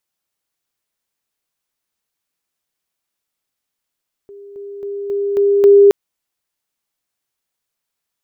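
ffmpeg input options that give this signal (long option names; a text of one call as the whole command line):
ffmpeg -f lavfi -i "aevalsrc='pow(10,(-34+6*floor(t/0.27))/20)*sin(2*PI*402*t)':duration=1.62:sample_rate=44100" out.wav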